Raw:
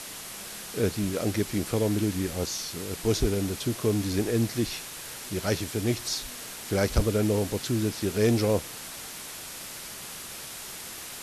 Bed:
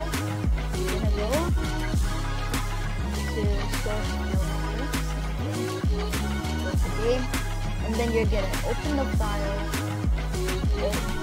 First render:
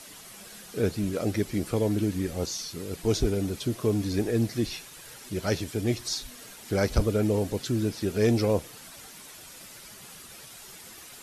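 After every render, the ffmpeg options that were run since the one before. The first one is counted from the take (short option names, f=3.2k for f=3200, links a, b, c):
-af "afftdn=nr=9:nf=-40"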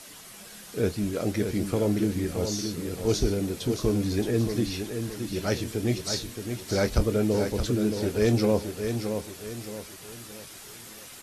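-filter_complex "[0:a]asplit=2[a][b];[b]adelay=24,volume=-12dB[c];[a][c]amix=inputs=2:normalize=0,aecho=1:1:622|1244|1866|2488|3110:0.447|0.174|0.0679|0.0265|0.0103"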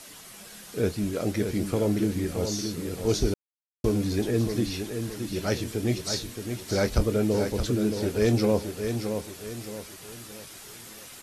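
-filter_complex "[0:a]asplit=3[a][b][c];[a]atrim=end=3.34,asetpts=PTS-STARTPTS,afade=t=out:st=3.336:d=0.004:c=hsin[d];[b]atrim=start=3.34:end=3.84,asetpts=PTS-STARTPTS,volume=0[e];[c]atrim=start=3.84,asetpts=PTS-STARTPTS,afade=t=in:d=0.004:c=hsin[f];[d][e][f]concat=n=3:v=0:a=1"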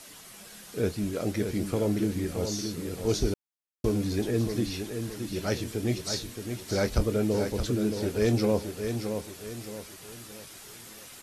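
-af "volume=-2dB"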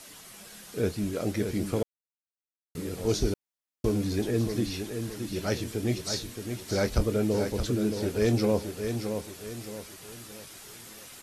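-filter_complex "[0:a]asplit=3[a][b][c];[a]atrim=end=1.83,asetpts=PTS-STARTPTS,afade=t=out:st=1.826:d=0.004:c=hsin[d];[b]atrim=start=1.83:end=2.75,asetpts=PTS-STARTPTS,volume=0[e];[c]atrim=start=2.75,asetpts=PTS-STARTPTS,afade=t=in:d=0.004:c=hsin[f];[d][e][f]concat=n=3:v=0:a=1"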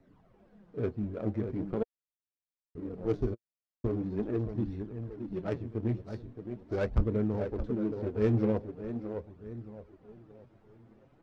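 -af "flanger=delay=0.5:depth=8.7:regen=24:speed=0.42:shape=sinusoidal,adynamicsmooth=sensitivity=1.5:basefreq=610"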